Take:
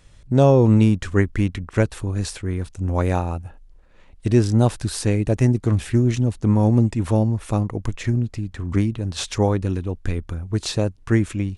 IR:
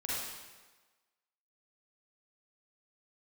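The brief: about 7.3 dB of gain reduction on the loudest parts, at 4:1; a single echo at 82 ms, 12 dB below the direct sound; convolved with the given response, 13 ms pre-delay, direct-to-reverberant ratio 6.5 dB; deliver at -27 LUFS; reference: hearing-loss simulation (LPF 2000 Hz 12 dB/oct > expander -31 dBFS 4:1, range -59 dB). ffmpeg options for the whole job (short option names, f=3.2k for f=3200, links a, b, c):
-filter_complex "[0:a]acompressor=threshold=-19dB:ratio=4,aecho=1:1:82:0.251,asplit=2[a][b];[1:a]atrim=start_sample=2205,adelay=13[c];[b][c]afir=irnorm=-1:irlink=0,volume=-11dB[d];[a][d]amix=inputs=2:normalize=0,lowpass=2k,agate=range=-59dB:threshold=-31dB:ratio=4,volume=-2dB"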